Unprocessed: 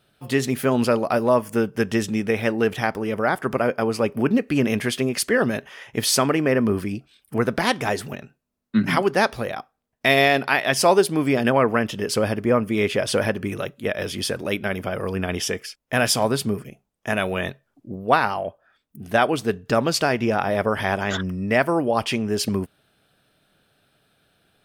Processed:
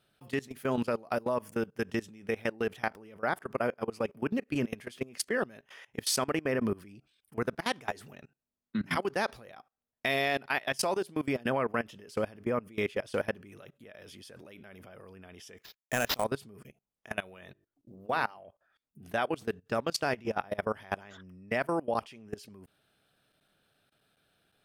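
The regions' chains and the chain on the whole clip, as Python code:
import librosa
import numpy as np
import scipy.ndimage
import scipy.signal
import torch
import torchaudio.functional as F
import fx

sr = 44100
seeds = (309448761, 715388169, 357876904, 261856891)

y = fx.chain(x, sr, fx.transient(attack_db=11, sustain_db=-10),
    fx.sample_hold(seeds[0], rate_hz=8900.0, jitter_pct=0), at=(15.61, 16.24))
y = fx.chain(y, sr, fx.quant_float(bits=6),
    fx.hum_notches(base_hz=50, count=9), at=(17.34, 18.39))
y = fx.low_shelf(y, sr, hz=420.0, db=-2.5)
y = fx.level_steps(y, sr, step_db=22)
y = y * 10.0 ** (-6.5 / 20.0)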